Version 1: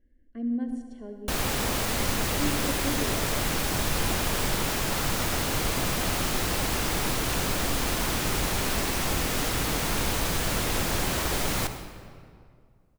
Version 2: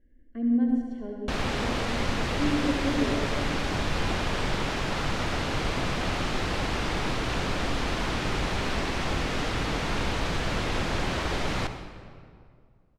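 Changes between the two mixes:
speech: send +8.5 dB; master: add LPF 4000 Hz 12 dB/oct

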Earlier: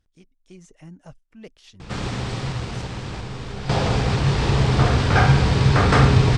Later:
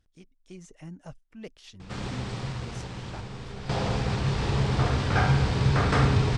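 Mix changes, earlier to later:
background -9.5 dB; reverb: on, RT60 0.40 s

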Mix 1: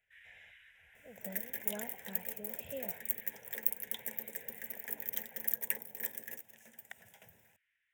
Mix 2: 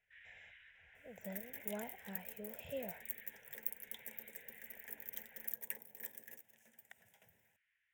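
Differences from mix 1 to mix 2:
first sound: add air absorption 120 m; second sound -9.0 dB

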